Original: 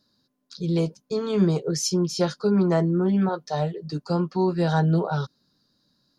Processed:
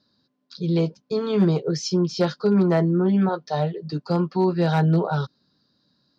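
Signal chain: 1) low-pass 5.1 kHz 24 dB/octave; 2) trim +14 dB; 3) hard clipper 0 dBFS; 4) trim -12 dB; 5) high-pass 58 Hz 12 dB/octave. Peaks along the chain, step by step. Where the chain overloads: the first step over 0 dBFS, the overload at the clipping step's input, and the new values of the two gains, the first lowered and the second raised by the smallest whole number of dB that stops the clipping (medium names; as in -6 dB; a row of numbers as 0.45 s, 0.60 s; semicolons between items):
-9.5 dBFS, +4.5 dBFS, 0.0 dBFS, -12.0 dBFS, -9.5 dBFS; step 2, 4.5 dB; step 2 +9 dB, step 4 -7 dB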